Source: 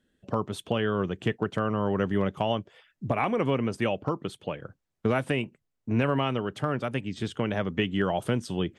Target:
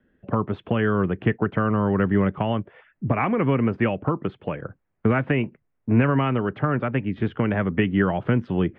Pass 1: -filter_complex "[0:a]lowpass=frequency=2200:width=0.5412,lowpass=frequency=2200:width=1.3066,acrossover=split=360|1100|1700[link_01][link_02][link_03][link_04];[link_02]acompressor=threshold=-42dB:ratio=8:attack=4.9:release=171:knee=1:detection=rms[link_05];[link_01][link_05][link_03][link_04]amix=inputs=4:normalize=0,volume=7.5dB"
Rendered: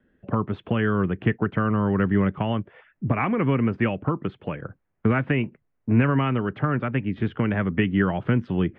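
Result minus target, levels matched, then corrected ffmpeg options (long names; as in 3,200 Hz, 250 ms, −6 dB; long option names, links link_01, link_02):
downward compressor: peak gain reduction +6.5 dB
-filter_complex "[0:a]lowpass=frequency=2200:width=0.5412,lowpass=frequency=2200:width=1.3066,acrossover=split=360|1100|1700[link_01][link_02][link_03][link_04];[link_02]acompressor=threshold=-34.5dB:ratio=8:attack=4.9:release=171:knee=1:detection=rms[link_05];[link_01][link_05][link_03][link_04]amix=inputs=4:normalize=0,volume=7.5dB"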